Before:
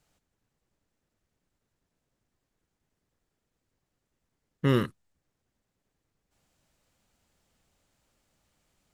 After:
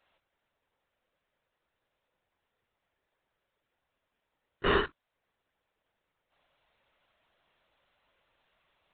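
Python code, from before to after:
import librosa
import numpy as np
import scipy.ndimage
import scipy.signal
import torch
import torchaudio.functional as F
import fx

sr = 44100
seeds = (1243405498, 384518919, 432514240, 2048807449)

y = scipy.signal.sosfilt(scipy.signal.butter(2, 510.0, 'highpass', fs=sr, output='sos'), x)
y = fx.pitch_keep_formants(y, sr, semitones=-2.0)
y = fx.lpc_vocoder(y, sr, seeds[0], excitation='whisper', order=16)
y = y * librosa.db_to_amplitude(5.5)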